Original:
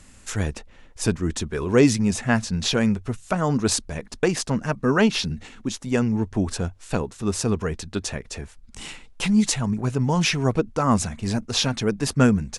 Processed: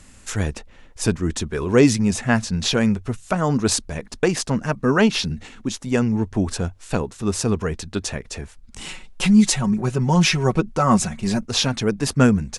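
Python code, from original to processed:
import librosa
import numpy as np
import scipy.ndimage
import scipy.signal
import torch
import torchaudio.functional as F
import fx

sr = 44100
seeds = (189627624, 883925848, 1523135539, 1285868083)

y = fx.comb(x, sr, ms=5.4, depth=0.6, at=(8.86, 11.43))
y = F.gain(torch.from_numpy(y), 2.0).numpy()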